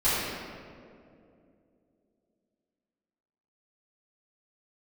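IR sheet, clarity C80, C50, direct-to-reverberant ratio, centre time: -1.0 dB, -3.0 dB, -16.0 dB, 139 ms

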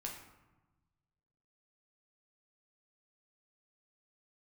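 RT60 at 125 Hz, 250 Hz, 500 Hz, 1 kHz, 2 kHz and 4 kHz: 1.9 s, 1.5 s, 1.1 s, 1.1 s, 0.90 s, 0.60 s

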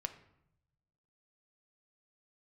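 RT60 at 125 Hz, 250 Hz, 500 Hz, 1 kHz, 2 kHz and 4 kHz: 1.5 s, 1.1 s, 0.80 s, 0.75 s, 0.65 s, 0.50 s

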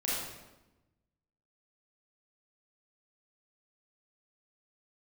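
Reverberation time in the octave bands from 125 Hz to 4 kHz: 1.6 s, 1.4 s, 1.1 s, 0.95 s, 0.90 s, 0.80 s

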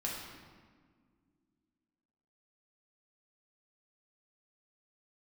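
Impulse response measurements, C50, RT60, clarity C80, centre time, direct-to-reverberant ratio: 1.0 dB, no single decay rate, 3.0 dB, 76 ms, -4.0 dB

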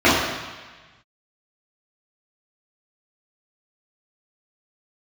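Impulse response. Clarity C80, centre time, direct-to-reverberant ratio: 3.0 dB, 80 ms, -11.5 dB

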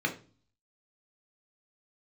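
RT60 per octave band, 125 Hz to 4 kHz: 0.70 s, 0.60 s, 0.40 s, 0.35 s, 0.30 s, 0.40 s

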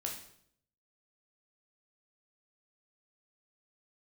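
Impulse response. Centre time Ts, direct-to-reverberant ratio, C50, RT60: 28 ms, 0.0 dB, 6.0 dB, 0.65 s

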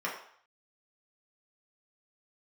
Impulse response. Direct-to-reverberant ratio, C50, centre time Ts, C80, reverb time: -4.5 dB, 5.5 dB, 32 ms, 9.0 dB, 0.60 s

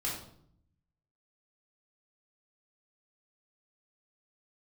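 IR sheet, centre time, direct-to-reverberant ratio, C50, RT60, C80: 40 ms, -5.5 dB, 4.0 dB, 0.65 s, 7.5 dB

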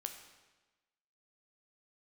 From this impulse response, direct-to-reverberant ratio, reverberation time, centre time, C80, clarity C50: 5.0 dB, 1.2 s, 22 ms, 9.5 dB, 8.0 dB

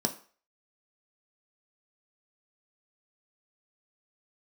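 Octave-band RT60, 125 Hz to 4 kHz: 0.30 s, 0.35 s, 0.40 s, 0.45 s, 0.40 s, 0.40 s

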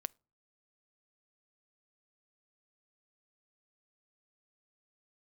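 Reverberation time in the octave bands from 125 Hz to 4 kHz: 0.55 s, 0.50 s, 0.40 s, 0.40 s, 0.25 s, 0.25 s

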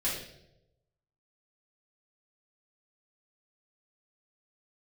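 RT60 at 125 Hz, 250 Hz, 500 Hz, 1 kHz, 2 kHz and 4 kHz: 1.2 s, 0.90 s, 1.1 s, 0.75 s, 0.65 s, 0.65 s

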